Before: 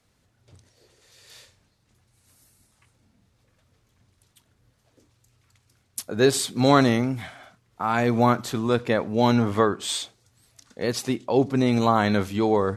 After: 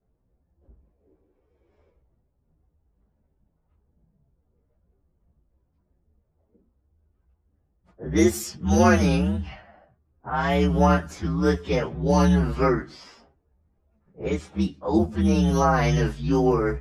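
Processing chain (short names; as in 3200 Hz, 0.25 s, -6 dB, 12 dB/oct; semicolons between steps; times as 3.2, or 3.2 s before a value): inharmonic rescaling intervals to 125%; low-pass opened by the level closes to 870 Hz, open at -20.5 dBFS; varispeed -24%; gain +2 dB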